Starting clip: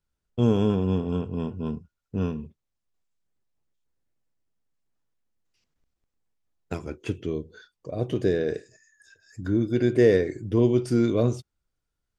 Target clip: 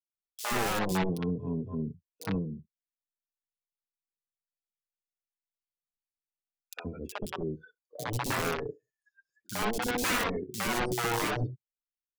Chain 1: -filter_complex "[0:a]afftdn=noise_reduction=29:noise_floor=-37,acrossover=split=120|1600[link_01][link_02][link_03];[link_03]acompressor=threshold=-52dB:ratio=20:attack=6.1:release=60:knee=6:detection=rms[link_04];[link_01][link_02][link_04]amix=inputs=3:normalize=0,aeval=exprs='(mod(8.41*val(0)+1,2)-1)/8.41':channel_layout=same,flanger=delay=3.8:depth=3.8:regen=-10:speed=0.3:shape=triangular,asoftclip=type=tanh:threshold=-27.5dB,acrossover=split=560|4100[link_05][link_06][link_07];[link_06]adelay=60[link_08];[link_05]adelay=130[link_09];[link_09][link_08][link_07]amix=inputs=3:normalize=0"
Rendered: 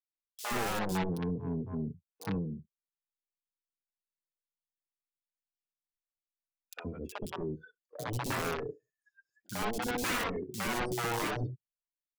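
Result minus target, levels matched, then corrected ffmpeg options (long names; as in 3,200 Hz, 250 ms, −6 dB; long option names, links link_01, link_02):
soft clipping: distortion +17 dB
-filter_complex "[0:a]afftdn=noise_reduction=29:noise_floor=-37,acrossover=split=120|1600[link_01][link_02][link_03];[link_03]acompressor=threshold=-52dB:ratio=20:attack=6.1:release=60:knee=6:detection=rms[link_04];[link_01][link_02][link_04]amix=inputs=3:normalize=0,aeval=exprs='(mod(8.41*val(0)+1,2)-1)/8.41':channel_layout=same,flanger=delay=3.8:depth=3.8:regen=-10:speed=0.3:shape=triangular,asoftclip=type=tanh:threshold=-16dB,acrossover=split=560|4100[link_05][link_06][link_07];[link_06]adelay=60[link_08];[link_05]adelay=130[link_09];[link_09][link_08][link_07]amix=inputs=3:normalize=0"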